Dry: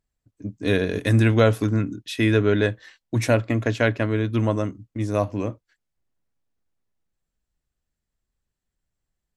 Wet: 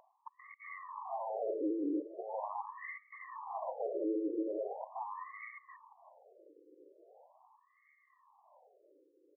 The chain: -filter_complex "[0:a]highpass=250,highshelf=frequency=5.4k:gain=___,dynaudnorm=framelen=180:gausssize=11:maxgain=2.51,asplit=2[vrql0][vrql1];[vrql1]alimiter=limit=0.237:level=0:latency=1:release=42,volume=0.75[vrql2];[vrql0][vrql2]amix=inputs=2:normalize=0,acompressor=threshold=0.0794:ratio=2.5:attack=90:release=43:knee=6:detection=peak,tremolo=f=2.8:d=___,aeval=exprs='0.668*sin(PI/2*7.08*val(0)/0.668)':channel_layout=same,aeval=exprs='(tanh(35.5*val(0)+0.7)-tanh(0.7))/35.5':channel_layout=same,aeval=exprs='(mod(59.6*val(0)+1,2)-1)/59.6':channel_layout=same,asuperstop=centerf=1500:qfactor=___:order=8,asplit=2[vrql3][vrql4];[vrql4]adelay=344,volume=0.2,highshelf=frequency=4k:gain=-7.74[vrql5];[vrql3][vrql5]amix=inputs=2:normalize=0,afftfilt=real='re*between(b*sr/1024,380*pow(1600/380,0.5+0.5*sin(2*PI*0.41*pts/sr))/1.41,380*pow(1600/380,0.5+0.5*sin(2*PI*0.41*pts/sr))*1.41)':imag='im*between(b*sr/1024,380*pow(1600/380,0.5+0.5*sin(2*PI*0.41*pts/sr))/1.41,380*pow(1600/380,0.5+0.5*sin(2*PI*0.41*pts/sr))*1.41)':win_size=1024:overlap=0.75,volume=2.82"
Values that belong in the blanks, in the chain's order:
-2, 0.34, 1.6